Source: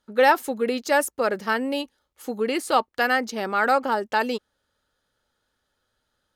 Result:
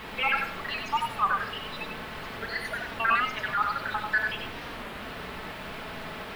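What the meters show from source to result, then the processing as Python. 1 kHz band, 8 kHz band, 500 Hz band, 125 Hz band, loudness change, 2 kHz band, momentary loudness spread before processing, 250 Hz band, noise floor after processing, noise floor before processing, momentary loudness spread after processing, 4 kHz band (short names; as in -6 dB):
-5.0 dB, -13.5 dB, -16.0 dB, n/a, -6.5 dB, -2.0 dB, 11 LU, -12.5 dB, -40 dBFS, -76 dBFS, 12 LU, -1.5 dB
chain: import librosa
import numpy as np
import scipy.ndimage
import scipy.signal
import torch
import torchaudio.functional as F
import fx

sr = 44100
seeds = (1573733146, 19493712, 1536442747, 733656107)

p1 = fx.spec_dropout(x, sr, seeds[0], share_pct=76)
p2 = scipy.signal.sosfilt(scipy.signal.butter(4, 1200.0, 'highpass', fs=sr, output='sos'), p1)
p3 = fx.high_shelf(p2, sr, hz=3300.0, db=10.5)
p4 = fx.level_steps(p3, sr, step_db=11)
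p5 = p3 + (p4 * 10.0 ** (-2.5 / 20.0))
p6 = fx.quant_dither(p5, sr, seeds[1], bits=6, dither='triangular')
p7 = 10.0 ** (-22.5 / 20.0) * np.tanh(p6 / 10.0 ** (-22.5 / 20.0))
p8 = fx.air_absorb(p7, sr, metres=480.0)
p9 = p8 + fx.echo_single(p8, sr, ms=94, db=-5.0, dry=0)
p10 = fx.room_shoebox(p9, sr, seeds[2], volume_m3=2000.0, walls='furnished', distance_m=1.5)
p11 = fx.record_warp(p10, sr, rpm=33.33, depth_cents=160.0)
y = p11 * 10.0 ** (7.0 / 20.0)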